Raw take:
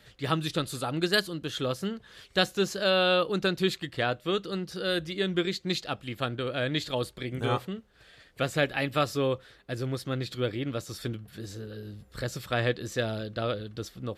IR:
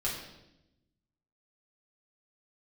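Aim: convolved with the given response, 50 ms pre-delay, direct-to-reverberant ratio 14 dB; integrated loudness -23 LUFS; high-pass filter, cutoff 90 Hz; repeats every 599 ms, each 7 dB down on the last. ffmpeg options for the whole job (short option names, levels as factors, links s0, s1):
-filter_complex "[0:a]highpass=90,aecho=1:1:599|1198|1797|2396|2995:0.447|0.201|0.0905|0.0407|0.0183,asplit=2[s0][s1];[1:a]atrim=start_sample=2205,adelay=50[s2];[s1][s2]afir=irnorm=-1:irlink=0,volume=0.112[s3];[s0][s3]amix=inputs=2:normalize=0,volume=2"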